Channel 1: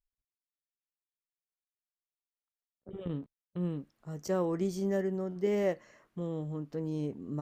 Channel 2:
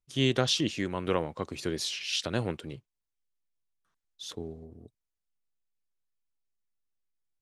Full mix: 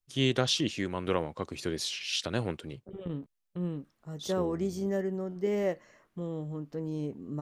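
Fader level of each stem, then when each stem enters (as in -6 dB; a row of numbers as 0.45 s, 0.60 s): 0.0 dB, -1.0 dB; 0.00 s, 0.00 s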